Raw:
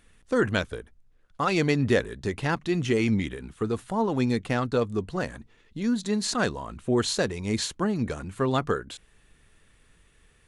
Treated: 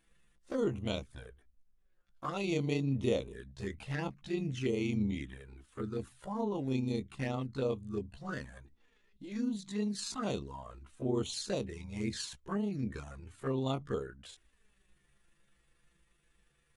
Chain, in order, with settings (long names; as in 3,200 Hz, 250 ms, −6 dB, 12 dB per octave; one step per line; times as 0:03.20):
flanger swept by the level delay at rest 6.2 ms, full sweep at −21 dBFS
time stretch by overlap-add 1.6×, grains 79 ms
level −7 dB